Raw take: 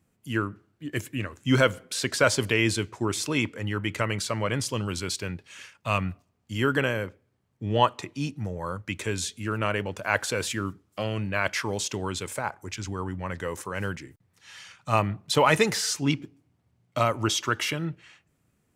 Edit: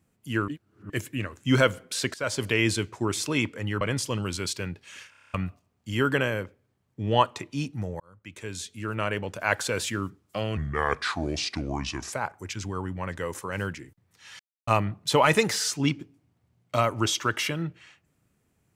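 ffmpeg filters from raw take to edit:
-filter_complex "[0:a]asplit=18[s0][s1][s2][s3][s4][s5][s6][s7][s8][s9][s10][s11][s12][s13][s14][s15][s16][s17];[s0]atrim=end=0.482[s18];[s1]atrim=start=0.478:end=0.902,asetpts=PTS-STARTPTS,areverse[s19];[s2]atrim=start=0.898:end=2.14,asetpts=PTS-STARTPTS,afade=t=out:st=1.238:d=0.004:c=hsin:silence=0.1[s20];[s3]atrim=start=2.14:end=3.812,asetpts=PTS-STARTPTS,afade=t=in:d=0.56:c=qsin:silence=0.1[s21];[s4]atrim=start=4.438:end=5.762[s22];[s5]atrim=start=5.728:end=5.762[s23];[s6]atrim=start=5.728:end=5.762[s24];[s7]atrim=start=5.728:end=5.762[s25];[s8]atrim=start=5.728:end=5.762[s26];[s9]atrim=start=5.728:end=5.762[s27];[s10]atrim=start=5.728:end=5.762[s28];[s11]atrim=start=5.728:end=5.762[s29];[s12]atrim=start=5.968:end=8.63,asetpts=PTS-STARTPTS,afade=t=out:st=2.658:d=0.004:c=hsin[s30];[s13]atrim=start=8.63:end=11.204,asetpts=PTS-STARTPTS,afade=t=in:d=1.69:c=qsin[s31];[s14]atrim=start=11.2:end=12.35,asetpts=PTS-STARTPTS,asetrate=32634,aresample=44100[s32];[s15]atrim=start=12.346:end=14.62,asetpts=PTS-STARTPTS,afade=t=out:st=2.27:d=0.004:c=hsin[s33];[s16]atrim=start=14.62:end=14.9,asetpts=PTS-STARTPTS,volume=0[s34];[s17]atrim=start=14.9,asetpts=PTS-STARTPTS,afade=t=in:d=0.004:c=hsin[s35];[s18][s19]acrossfade=d=0.004:c1=hsin:c2=hsin[s36];[s20][s21]concat=n=2:v=0:a=1[s37];[s36][s37]acrossfade=d=0.004:c1=hsin:c2=hsin[s38];[s38][s22]acrossfade=d=0.004:c1=hsin:c2=hsin[s39];[s39][s23]acrossfade=d=0.004:c1=hsin:c2=hsin[s40];[s40][s24]acrossfade=d=0.004:c1=hsin:c2=hsin[s41];[s41][s25]acrossfade=d=0.004:c1=hsin:c2=hsin[s42];[s42][s26]acrossfade=d=0.004:c1=hsin:c2=hsin[s43];[s43][s27]acrossfade=d=0.004:c1=hsin:c2=hsin[s44];[s44][s28]acrossfade=d=0.004:c1=hsin:c2=hsin[s45];[s45][s29]acrossfade=d=0.004:c1=hsin:c2=hsin[s46];[s30][s31]concat=n=2:v=0:a=1[s47];[s46][s47]acrossfade=d=0.004:c1=hsin:c2=hsin[s48];[s48][s32]acrossfade=d=0.004:c1=hsin:c2=hsin[s49];[s33][s34][s35]concat=n=3:v=0:a=1[s50];[s49][s50]acrossfade=d=0.004:c1=hsin:c2=hsin"

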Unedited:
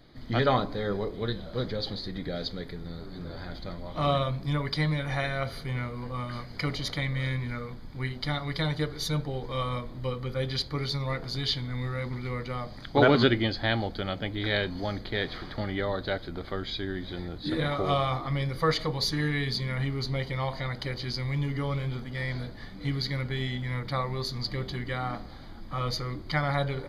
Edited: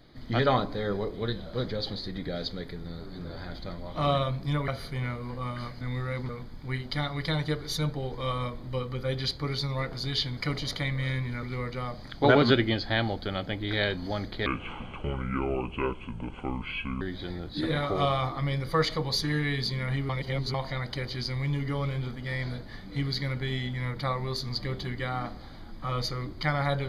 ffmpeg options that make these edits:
-filter_complex "[0:a]asplit=10[s0][s1][s2][s3][s4][s5][s6][s7][s8][s9];[s0]atrim=end=4.682[s10];[s1]atrim=start=5.408:end=6.542[s11];[s2]atrim=start=11.678:end=12.162[s12];[s3]atrim=start=7.598:end=11.682[s13];[s4]atrim=start=6.538:end=7.602[s14];[s5]atrim=start=12.158:end=15.194[s15];[s6]atrim=start=15.19:end=16.9,asetpts=PTS-STARTPTS,asetrate=29547,aresample=44100[s16];[s7]atrim=start=16.896:end=19.982[s17];[s8]atrim=start=19.978:end=20.432,asetpts=PTS-STARTPTS,areverse[s18];[s9]atrim=start=20.428[s19];[s10][s11]acrossfade=d=0.004:c1=hsin:c2=hsin[s20];[s20][s12]acrossfade=d=0.004:c1=hsin:c2=hsin[s21];[s21][s13]acrossfade=d=0.004:c1=hsin:c2=hsin[s22];[s22][s14]acrossfade=d=0.004:c1=hsin:c2=hsin[s23];[s23][s15]acrossfade=d=0.004:c1=hsin:c2=hsin[s24];[s24][s16]acrossfade=d=0.004:c1=hsin:c2=hsin[s25];[s25][s17]acrossfade=d=0.004:c1=hsin:c2=hsin[s26];[s26][s18]acrossfade=d=0.004:c1=hsin:c2=hsin[s27];[s27][s19]acrossfade=d=0.004:c1=hsin:c2=hsin"

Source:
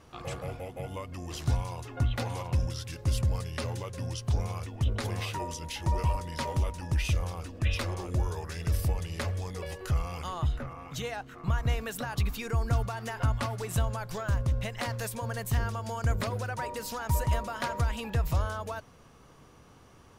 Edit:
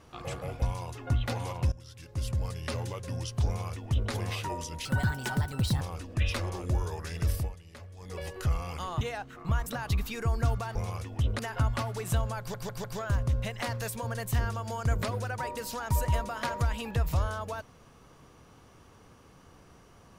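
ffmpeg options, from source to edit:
-filter_complex "[0:a]asplit=14[s0][s1][s2][s3][s4][s5][s6][s7][s8][s9][s10][s11][s12][s13];[s0]atrim=end=0.622[s14];[s1]atrim=start=1.518:end=2.62,asetpts=PTS-STARTPTS,afade=t=out:st=1.098:d=0.004:c=hsin:silence=0.11885[s15];[s2]atrim=start=2.62:end=5.754,asetpts=PTS-STARTPTS,afade=t=in:d=0.99:silence=0.11885[s16];[s3]atrim=start=5.75:end=7.26,asetpts=PTS-STARTPTS,asetrate=69237,aresample=44100[s17];[s4]atrim=start=7.256:end=9.01,asetpts=PTS-STARTPTS,afade=t=out:st=1.514:d=0.24:silence=0.177828[s18];[s5]atrim=start=9.01:end=9.41,asetpts=PTS-STARTPTS,volume=0.178[s19];[s6]atrim=start=9.41:end=10.462,asetpts=PTS-STARTPTS,afade=t=in:d=0.24:silence=0.177828[s20];[s7]atrim=start=10.998:end=11.652[s21];[s8]atrim=start=11.938:end=13.032[s22];[s9]atrim=start=4.368:end=5.012[s23];[s10]atrim=start=13.028:end=14.182[s24];[s11]atrim=start=14.028:end=14.182[s25];[s12]atrim=start=14.028:end=14.182[s26];[s13]atrim=start=14.028[s27];[s15][s16]concat=n=2:v=0:a=1[s28];[s14][s28]acrossfade=d=0.004:c1=hsin:c2=hsin[s29];[s29][s17]acrossfade=d=0.004:c1=hsin:c2=hsin[s30];[s18][s19][s20]concat=n=3:v=0:a=1[s31];[s30][s31]acrossfade=d=0.004:c1=hsin:c2=hsin[s32];[s32][s21]acrossfade=d=0.004:c1=hsin:c2=hsin[s33];[s33][s22]acrossfade=d=0.004:c1=hsin:c2=hsin[s34];[s34][s23]acrossfade=d=0.004:c1=hsin:c2=hsin[s35];[s35][s24]acrossfade=d=0.004:c1=hsin:c2=hsin[s36];[s36][s25]acrossfade=d=0.004:c1=hsin:c2=hsin[s37];[s37][s26]acrossfade=d=0.004:c1=hsin:c2=hsin[s38];[s38][s27]acrossfade=d=0.004:c1=hsin:c2=hsin"

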